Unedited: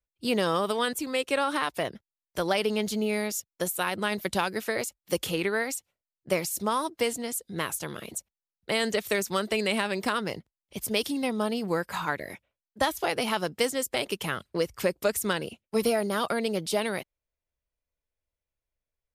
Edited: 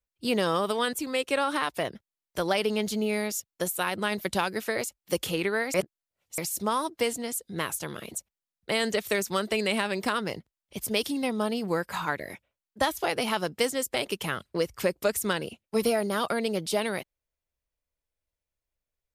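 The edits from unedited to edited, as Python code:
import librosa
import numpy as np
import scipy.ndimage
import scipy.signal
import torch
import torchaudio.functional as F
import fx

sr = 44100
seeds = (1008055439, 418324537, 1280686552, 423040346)

y = fx.edit(x, sr, fx.reverse_span(start_s=5.74, length_s=0.64), tone=tone)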